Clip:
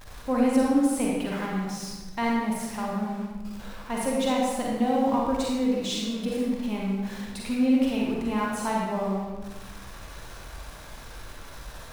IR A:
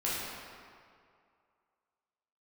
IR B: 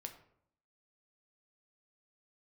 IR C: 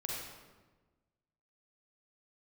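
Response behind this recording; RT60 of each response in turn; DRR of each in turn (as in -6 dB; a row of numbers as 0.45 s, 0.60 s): C; 2.3 s, 0.70 s, 1.3 s; -8.5 dB, 4.5 dB, -3.5 dB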